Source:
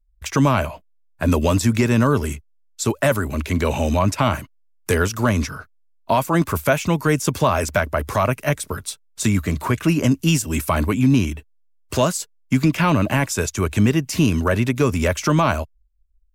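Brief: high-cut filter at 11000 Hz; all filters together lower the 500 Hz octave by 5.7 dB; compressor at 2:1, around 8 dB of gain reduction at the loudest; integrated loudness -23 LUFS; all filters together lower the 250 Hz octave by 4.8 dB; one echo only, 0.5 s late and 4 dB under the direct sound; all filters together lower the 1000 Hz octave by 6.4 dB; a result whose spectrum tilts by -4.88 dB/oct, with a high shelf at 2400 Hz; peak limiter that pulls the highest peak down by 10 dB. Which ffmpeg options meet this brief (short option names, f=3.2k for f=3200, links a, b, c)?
-af "lowpass=11k,equalizer=f=250:t=o:g=-5,equalizer=f=500:t=o:g=-4,equalizer=f=1k:t=o:g=-6,highshelf=f=2.4k:g=-3.5,acompressor=threshold=-30dB:ratio=2,alimiter=limit=-24dB:level=0:latency=1,aecho=1:1:500:0.631,volume=10dB"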